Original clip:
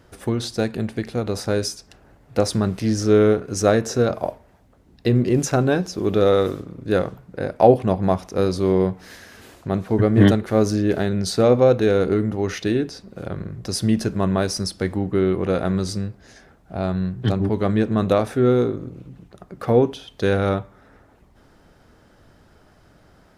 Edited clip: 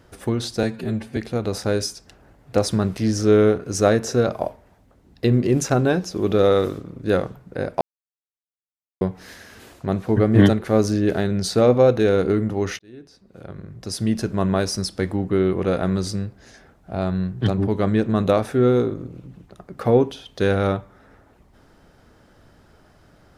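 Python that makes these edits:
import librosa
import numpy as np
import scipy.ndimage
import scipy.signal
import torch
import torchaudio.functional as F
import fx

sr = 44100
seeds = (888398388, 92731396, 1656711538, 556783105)

y = fx.edit(x, sr, fx.stretch_span(start_s=0.63, length_s=0.36, factor=1.5),
    fx.silence(start_s=7.63, length_s=1.2),
    fx.fade_in_span(start_s=12.61, length_s=1.71), tone=tone)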